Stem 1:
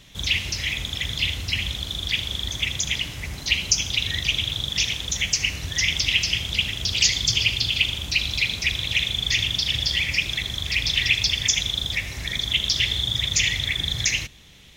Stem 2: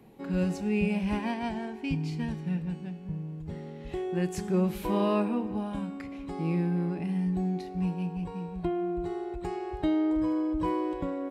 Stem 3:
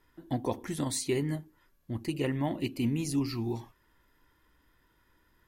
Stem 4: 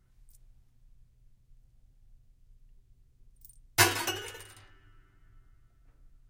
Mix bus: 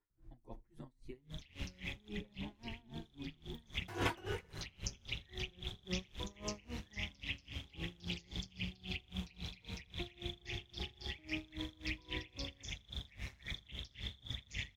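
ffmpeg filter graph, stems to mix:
-filter_complex "[0:a]acrossover=split=100|330|710[a][b][c][d];[a]acompressor=threshold=-36dB:ratio=4[e];[b]acompressor=threshold=-46dB:ratio=4[f];[c]acompressor=threshold=-57dB:ratio=4[g];[d]acompressor=threshold=-28dB:ratio=4[h];[e][f][g][h]amix=inputs=4:normalize=0,tremolo=f=140:d=0.519,adelay=1150,volume=-3.5dB[i];[1:a]adelay=1350,volume=-15dB[j];[2:a]deesser=0.8,asplit=2[k][l];[l]adelay=7.3,afreqshift=0.49[m];[k][m]amix=inputs=2:normalize=1,volume=-14dB,asplit=2[n][o];[3:a]tiltshelf=f=1.3k:g=4.5,asoftclip=type=tanh:threshold=-19.5dB,adelay=100,volume=3dB[p];[o]apad=whole_len=701742[q];[i][q]sidechaincompress=threshold=-52dB:ratio=8:attack=7.9:release=288[r];[r][j][n][p]amix=inputs=4:normalize=0,highshelf=f=3.4k:g=-12,aeval=exprs='val(0)*pow(10,-26*(0.5-0.5*cos(2*PI*3.7*n/s))/20)':c=same"

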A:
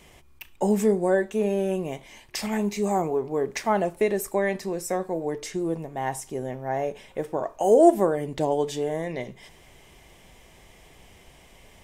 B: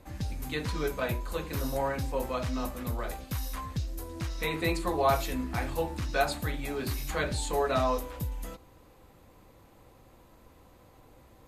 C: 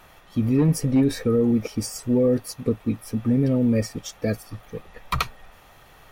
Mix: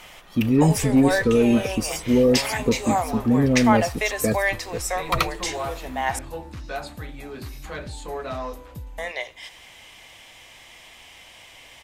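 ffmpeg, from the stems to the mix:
-filter_complex "[0:a]highpass=f=600:w=0.5412,highpass=f=600:w=1.3066,equalizer=f=3.2k:w=0.63:g=8.5,volume=3dB,asplit=3[a][b][c];[a]atrim=end=6.19,asetpts=PTS-STARTPTS,afade=t=out:st=6.186:d=0.004:c=hsin[d];[b]atrim=start=6.19:end=8.98,asetpts=PTS-STARTPTS,volume=0[e];[c]atrim=start=8.98,asetpts=PTS-STARTPTS,afade=t=in:d=0.004:c=hsin[f];[d][e][f]concat=n=3:v=0:a=1[g];[1:a]highshelf=f=7.2k:g=-6.5,asoftclip=type=tanh:threshold=-19.5dB,adelay=550,volume=-2.5dB[h];[2:a]equalizer=f=93:t=o:w=0.77:g=-7,volume=2.5dB[i];[g][h][i]amix=inputs=3:normalize=0"

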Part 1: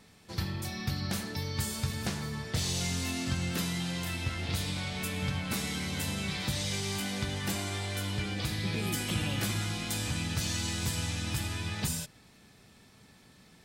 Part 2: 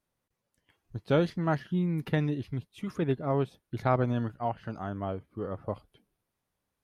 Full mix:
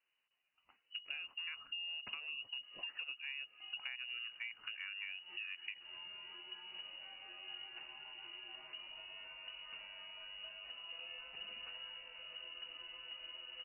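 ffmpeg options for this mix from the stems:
-filter_complex "[0:a]lowpass=f=2.1k:p=1,adelay=2250,volume=-16.5dB[a];[1:a]acompressor=threshold=-33dB:ratio=3,lowpass=f=4.1k:w=0.5412,lowpass=f=4.1k:w=1.3066,bandreject=f=50:t=h:w=6,bandreject=f=100:t=h:w=6,bandreject=f=150:t=h:w=6,volume=-0.5dB,asplit=2[b][c];[c]apad=whole_len=700989[d];[a][d]sidechaincompress=threshold=-50dB:ratio=3:attack=12:release=151[e];[e][b]amix=inputs=2:normalize=0,lowpass=f=2.6k:t=q:w=0.5098,lowpass=f=2.6k:t=q:w=0.6013,lowpass=f=2.6k:t=q:w=0.9,lowpass=f=2.6k:t=q:w=2.563,afreqshift=-3000,acompressor=threshold=-42dB:ratio=6"

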